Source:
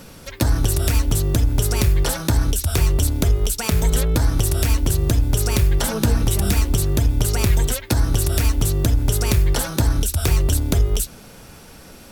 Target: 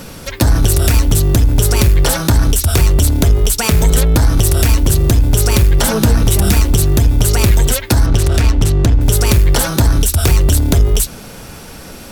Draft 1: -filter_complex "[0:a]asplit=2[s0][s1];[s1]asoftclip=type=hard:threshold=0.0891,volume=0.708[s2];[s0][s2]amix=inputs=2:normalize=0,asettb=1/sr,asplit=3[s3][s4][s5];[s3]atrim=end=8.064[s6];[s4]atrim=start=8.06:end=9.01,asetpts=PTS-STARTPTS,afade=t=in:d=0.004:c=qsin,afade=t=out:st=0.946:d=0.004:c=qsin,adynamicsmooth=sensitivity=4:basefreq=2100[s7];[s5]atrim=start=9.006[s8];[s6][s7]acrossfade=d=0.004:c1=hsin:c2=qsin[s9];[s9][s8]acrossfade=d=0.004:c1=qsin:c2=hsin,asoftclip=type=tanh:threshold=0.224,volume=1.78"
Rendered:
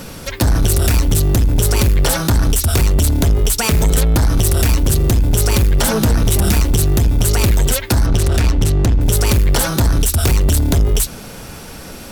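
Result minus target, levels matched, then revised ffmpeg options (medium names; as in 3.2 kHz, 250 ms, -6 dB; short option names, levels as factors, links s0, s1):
saturation: distortion +14 dB
-filter_complex "[0:a]asplit=2[s0][s1];[s1]asoftclip=type=hard:threshold=0.0891,volume=0.708[s2];[s0][s2]amix=inputs=2:normalize=0,asettb=1/sr,asplit=3[s3][s4][s5];[s3]atrim=end=8.064[s6];[s4]atrim=start=8.06:end=9.01,asetpts=PTS-STARTPTS,afade=t=in:d=0.004:c=qsin,afade=t=out:st=0.946:d=0.004:c=qsin,adynamicsmooth=sensitivity=4:basefreq=2100[s7];[s5]atrim=start=9.006[s8];[s6][s7]acrossfade=d=0.004:c1=hsin:c2=qsin[s9];[s9][s8]acrossfade=d=0.004:c1=qsin:c2=hsin,asoftclip=type=tanh:threshold=0.668,volume=1.78"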